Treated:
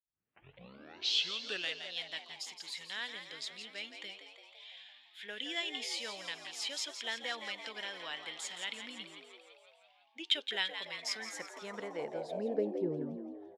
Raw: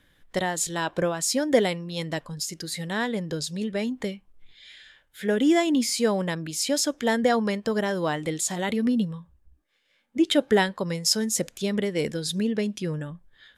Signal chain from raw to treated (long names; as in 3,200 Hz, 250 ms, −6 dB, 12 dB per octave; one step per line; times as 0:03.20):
turntable start at the beginning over 1.86 s
echo with shifted repeats 169 ms, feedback 63%, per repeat +83 Hz, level −9 dB
band-pass filter sweep 3,000 Hz → 280 Hz, 0:10.88–0:13.13
level −1.5 dB